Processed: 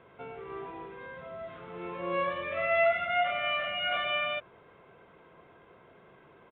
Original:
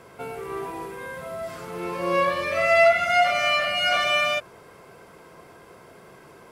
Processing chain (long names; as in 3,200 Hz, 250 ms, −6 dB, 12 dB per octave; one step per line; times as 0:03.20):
downsampling to 8,000 Hz
level −8.5 dB